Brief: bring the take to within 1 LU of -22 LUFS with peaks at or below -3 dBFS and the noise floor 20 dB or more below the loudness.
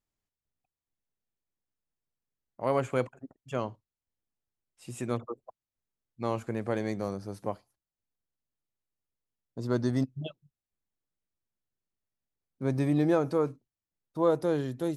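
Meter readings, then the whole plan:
loudness -31.0 LUFS; peak level -13.5 dBFS; loudness target -22.0 LUFS
-> trim +9 dB

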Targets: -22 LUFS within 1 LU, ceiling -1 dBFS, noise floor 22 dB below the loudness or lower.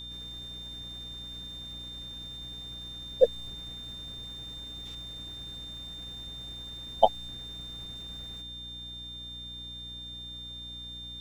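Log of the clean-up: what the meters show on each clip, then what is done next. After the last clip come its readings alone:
hum 60 Hz; highest harmonic 300 Hz; hum level -46 dBFS; steady tone 3.6 kHz; tone level -40 dBFS; loudness -35.5 LUFS; peak level -4.5 dBFS; loudness target -22.0 LUFS
-> de-hum 60 Hz, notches 5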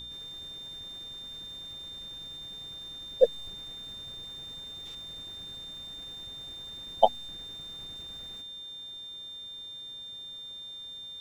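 hum not found; steady tone 3.6 kHz; tone level -40 dBFS
-> band-stop 3.6 kHz, Q 30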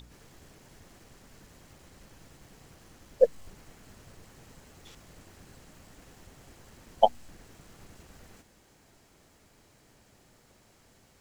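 steady tone not found; loudness -26.5 LUFS; peak level -4.5 dBFS; loudness target -22.0 LUFS
-> trim +4.5 dB; peak limiter -1 dBFS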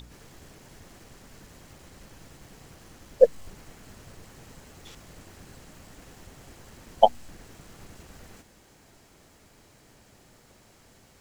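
loudness -22.5 LUFS; peak level -1.0 dBFS; noise floor -58 dBFS

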